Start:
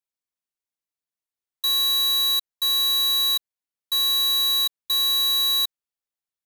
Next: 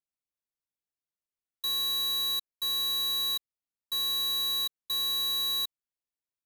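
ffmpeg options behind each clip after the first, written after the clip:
-af "lowshelf=f=490:g=7.5,volume=0.376"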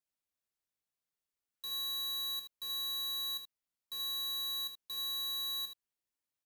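-af "alimiter=level_in=5.31:limit=0.0631:level=0:latency=1,volume=0.188,aecho=1:1:25|77:0.282|0.422"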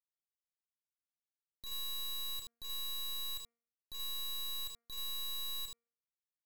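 -af "acrusher=bits=5:dc=4:mix=0:aa=0.000001,bandreject=f=233.4:t=h:w=4,bandreject=f=466.8:t=h:w=4,bandreject=f=700.2:t=h:w=4,bandreject=f=933.6:t=h:w=4,bandreject=f=1167:t=h:w=4,bandreject=f=1400.4:t=h:w=4,bandreject=f=1633.8:t=h:w=4,bandreject=f=1867.2:t=h:w=4,bandreject=f=2100.6:t=h:w=4,bandreject=f=2334:t=h:w=4,volume=1.12"

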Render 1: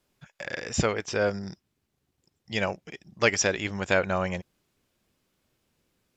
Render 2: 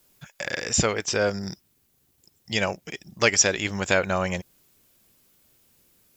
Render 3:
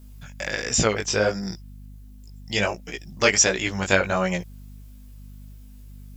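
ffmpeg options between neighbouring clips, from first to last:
-filter_complex "[0:a]aemphasis=mode=production:type=50fm,asplit=2[s0][s1];[s1]acompressor=threshold=0.0251:ratio=6,volume=0.841[s2];[s0][s2]amix=inputs=2:normalize=0"
-af "aeval=exprs='val(0)+0.00562*(sin(2*PI*50*n/s)+sin(2*PI*2*50*n/s)/2+sin(2*PI*3*50*n/s)/3+sin(2*PI*4*50*n/s)/4+sin(2*PI*5*50*n/s)/5)':c=same,flanger=delay=16:depth=4.8:speed=1.4,volume=1.68"

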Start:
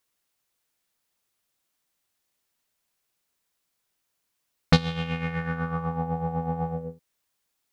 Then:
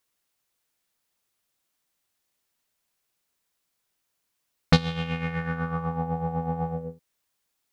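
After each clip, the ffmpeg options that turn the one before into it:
-af anull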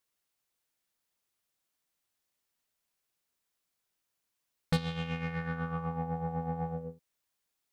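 -af "asoftclip=type=tanh:threshold=0.15,volume=0.531"

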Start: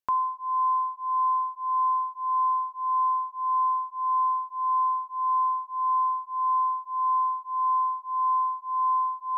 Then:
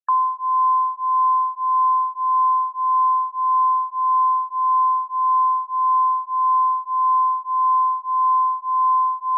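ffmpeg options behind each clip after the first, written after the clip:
-filter_complex "[0:a]asplit=2[s0][s1];[s1]alimiter=level_in=2.51:limit=0.0631:level=0:latency=1:release=474,volume=0.398,volume=1.41[s2];[s0][s2]amix=inputs=2:normalize=0,afftfilt=real='re*gte(hypot(re,im),0.0141)':imag='im*gte(hypot(re,im),0.0141)':win_size=1024:overlap=0.75,highpass=f=920:w=0.5412,highpass=f=920:w=1.3066,volume=1.88"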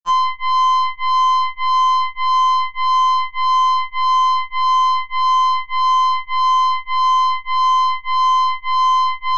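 -af "aeval=exprs='0.224*(cos(1*acos(clip(val(0)/0.224,-1,1)))-cos(1*PI/2))+0.0447*(cos(3*acos(clip(val(0)/0.224,-1,1)))-cos(3*PI/2))+0.0251*(cos(6*acos(clip(val(0)/0.224,-1,1)))-cos(6*PI/2))+0.0126*(cos(7*acos(clip(val(0)/0.224,-1,1)))-cos(7*PI/2))':c=same,acompressor=threshold=0.0316:ratio=2,afftfilt=real='re*2.83*eq(mod(b,8),0)':imag='im*2.83*eq(mod(b,8),0)':win_size=2048:overlap=0.75,volume=1.68"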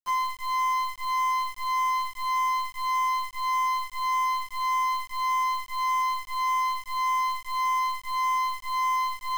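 -af "aeval=exprs='(tanh(4.47*val(0)+0.3)-tanh(0.3))/4.47':c=same,acrusher=bits=5:mix=0:aa=0.000001,volume=0.422"

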